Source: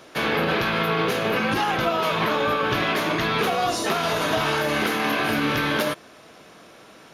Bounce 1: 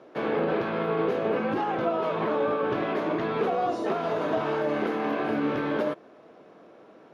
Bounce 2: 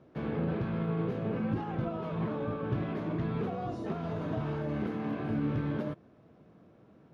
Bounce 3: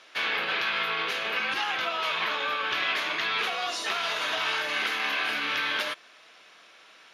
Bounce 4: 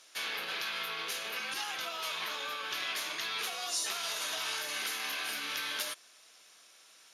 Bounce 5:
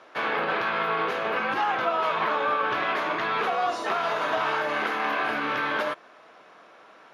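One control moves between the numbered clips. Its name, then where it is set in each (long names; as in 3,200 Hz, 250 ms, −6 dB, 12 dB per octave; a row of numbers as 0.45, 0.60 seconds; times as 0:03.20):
resonant band-pass, frequency: 420, 110, 2,800, 7,900, 1,100 Hertz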